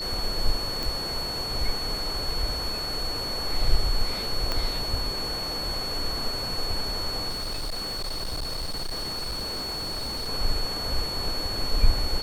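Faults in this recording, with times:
whistle 4,400 Hz −30 dBFS
0:00.83: click
0:04.52: click −12 dBFS
0:07.29–0:10.29: clipping −27.5 dBFS

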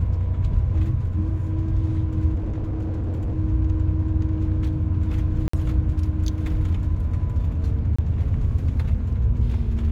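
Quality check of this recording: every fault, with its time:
0:02.34–0:03.35: clipping −22.5 dBFS
0:05.48–0:05.53: drop-out 54 ms
0:07.96–0:07.99: drop-out 25 ms

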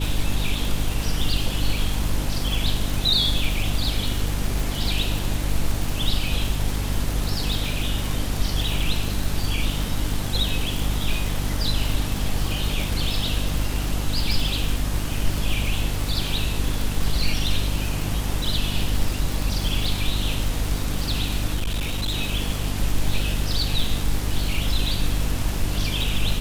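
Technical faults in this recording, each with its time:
surface crackle 160 per second −24 dBFS
mains hum 50 Hz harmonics 6 −27 dBFS
0:21.55–0:22.16: clipping −20.5 dBFS

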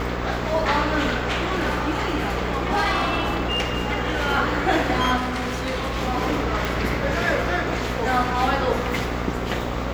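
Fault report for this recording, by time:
mains buzz 60 Hz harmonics 21 −28 dBFS
0:01.18–0:04.29: clipping −17 dBFS
0:05.16–0:05.97: clipping −22.5 dBFS
0:06.65: click

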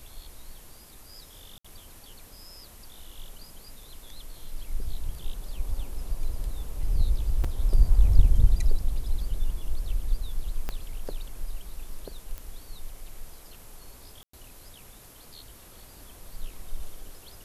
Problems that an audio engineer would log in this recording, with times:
0:01.58–0:01.65: drop-out 65 ms
0:07.44: drop-out 4.8 ms
0:10.69: click −17 dBFS
0:12.38: click −23 dBFS
0:14.23–0:14.33: drop-out 104 ms

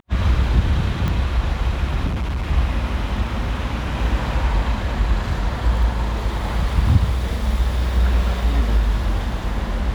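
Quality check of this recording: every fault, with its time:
0:01.08: click −11 dBFS
0:02.06–0:02.47: clipping −19.5 dBFS

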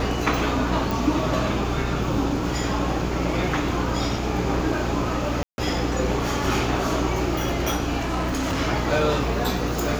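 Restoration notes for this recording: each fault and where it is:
mains buzz 60 Hz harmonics 15 −28 dBFS
0:00.91: click
0:05.43–0:05.58: drop-out 151 ms
0:07.98–0:08.61: clipping −21 dBFS

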